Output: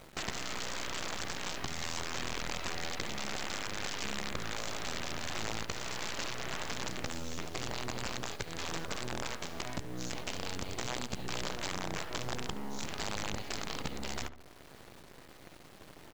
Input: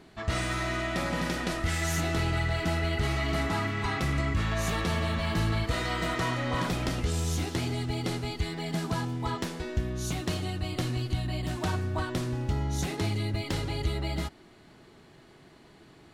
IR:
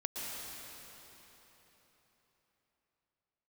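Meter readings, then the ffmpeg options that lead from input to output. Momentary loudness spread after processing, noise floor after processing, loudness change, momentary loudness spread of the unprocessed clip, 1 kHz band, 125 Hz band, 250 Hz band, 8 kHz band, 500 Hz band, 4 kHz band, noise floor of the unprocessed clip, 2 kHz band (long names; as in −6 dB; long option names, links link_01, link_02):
6 LU, −54 dBFS, −8.0 dB, 4 LU, −6.5 dB, −16.0 dB, −11.0 dB, −0.5 dB, −8.5 dB, −2.5 dB, −55 dBFS, −6.0 dB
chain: -filter_complex "[0:a]highshelf=frequency=3500:gain=-3,acompressor=threshold=-41dB:ratio=20,aeval=exprs='0.0335*(cos(1*acos(clip(val(0)/0.0335,-1,1)))-cos(1*PI/2))+0.00376*(cos(3*acos(clip(val(0)/0.0335,-1,1)))-cos(3*PI/2))+0.0106*(cos(6*acos(clip(val(0)/0.0335,-1,1)))-cos(6*PI/2))+0.00211*(cos(7*acos(clip(val(0)/0.0335,-1,1)))-cos(7*PI/2))':channel_layout=same,aresample=16000,aeval=exprs='(mod(42.2*val(0)+1,2)-1)/42.2':channel_layout=same,aresample=44100,acrusher=bits=9:mix=0:aa=0.000001,asplit=2[link_01][link_02];[link_02]adelay=71,lowpass=frequency=1800:poles=1,volume=-12dB,asplit=2[link_03][link_04];[link_04]adelay=71,lowpass=frequency=1800:poles=1,volume=0.54,asplit=2[link_05][link_06];[link_06]adelay=71,lowpass=frequency=1800:poles=1,volume=0.54,asplit=2[link_07][link_08];[link_08]adelay=71,lowpass=frequency=1800:poles=1,volume=0.54,asplit=2[link_09][link_10];[link_10]adelay=71,lowpass=frequency=1800:poles=1,volume=0.54,asplit=2[link_11][link_12];[link_12]adelay=71,lowpass=frequency=1800:poles=1,volume=0.54[link_13];[link_03][link_05][link_07][link_09][link_11][link_13]amix=inputs=6:normalize=0[link_14];[link_01][link_14]amix=inputs=2:normalize=0,volume=5dB"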